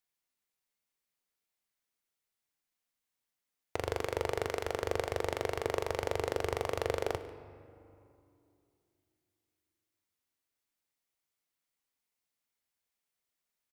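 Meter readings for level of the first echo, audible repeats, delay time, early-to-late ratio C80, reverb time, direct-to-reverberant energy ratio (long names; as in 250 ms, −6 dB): −20.0 dB, 1, 144 ms, 13.0 dB, 2.7 s, 10.5 dB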